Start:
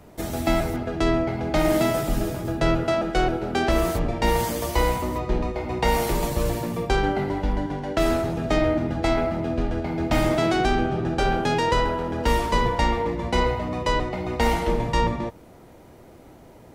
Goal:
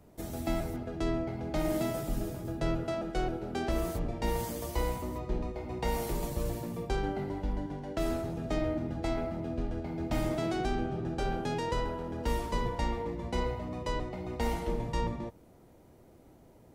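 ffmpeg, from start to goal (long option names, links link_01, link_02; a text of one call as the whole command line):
ffmpeg -i in.wav -af "equalizer=frequency=1900:width=0.37:gain=-5.5,volume=-8.5dB" out.wav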